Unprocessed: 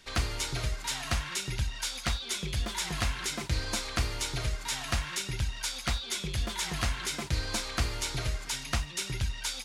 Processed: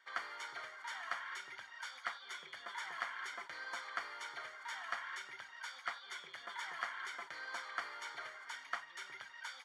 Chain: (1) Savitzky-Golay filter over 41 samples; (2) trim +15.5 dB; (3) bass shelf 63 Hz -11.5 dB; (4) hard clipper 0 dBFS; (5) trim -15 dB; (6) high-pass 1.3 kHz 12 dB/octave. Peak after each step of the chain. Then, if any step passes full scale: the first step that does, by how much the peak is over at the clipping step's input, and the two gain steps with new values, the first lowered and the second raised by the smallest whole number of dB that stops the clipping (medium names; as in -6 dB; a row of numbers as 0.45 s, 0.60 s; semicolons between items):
-18.5 dBFS, -3.0 dBFS, -3.5 dBFS, -3.5 dBFS, -18.5 dBFS, -22.5 dBFS; nothing clips